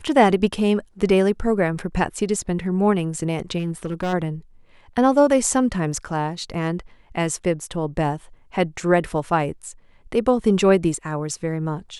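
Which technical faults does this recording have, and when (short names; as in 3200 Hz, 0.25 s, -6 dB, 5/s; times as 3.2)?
3.58–4.14 clipped -20 dBFS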